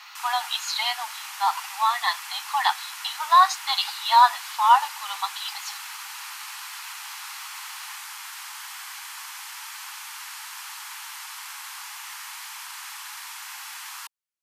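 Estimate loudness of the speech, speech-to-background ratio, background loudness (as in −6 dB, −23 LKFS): −23.0 LKFS, 13.0 dB, −36.0 LKFS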